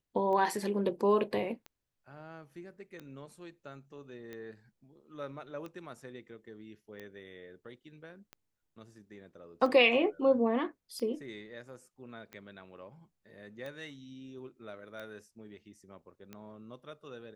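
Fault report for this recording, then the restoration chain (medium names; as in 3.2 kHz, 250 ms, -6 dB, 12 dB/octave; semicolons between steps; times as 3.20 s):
tick 45 rpm -30 dBFS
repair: de-click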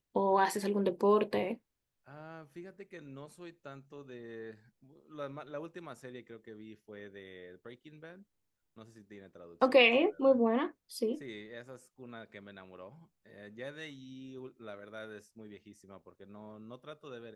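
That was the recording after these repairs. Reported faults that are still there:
nothing left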